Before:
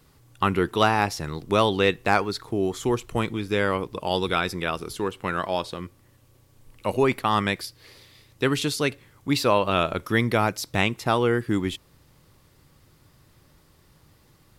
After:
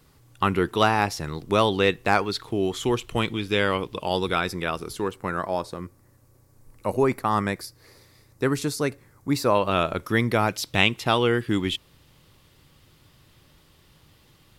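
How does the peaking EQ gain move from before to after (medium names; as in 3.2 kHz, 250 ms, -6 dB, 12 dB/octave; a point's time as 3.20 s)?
peaking EQ 3.1 kHz 0.78 oct
0 dB
from 2.26 s +7.5 dB
from 4.06 s -2 dB
from 5.14 s -13 dB
from 9.55 s -2 dB
from 10.49 s +8 dB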